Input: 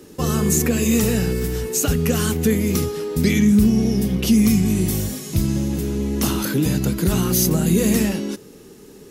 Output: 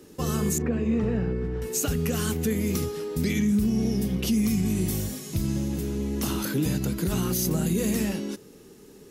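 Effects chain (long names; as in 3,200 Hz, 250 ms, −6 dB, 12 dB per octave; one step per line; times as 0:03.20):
0:00.58–0:01.62: low-pass filter 1,500 Hz 12 dB per octave
brickwall limiter −10.5 dBFS, peak gain reduction 5 dB
level −6 dB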